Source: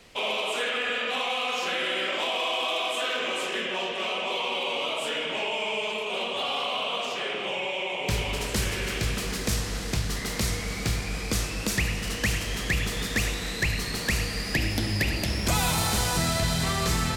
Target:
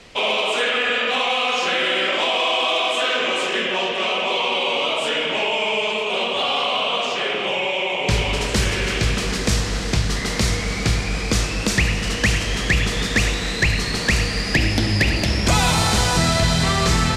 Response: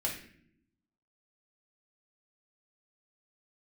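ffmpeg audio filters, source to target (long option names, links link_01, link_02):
-af "lowpass=7600,volume=8dB"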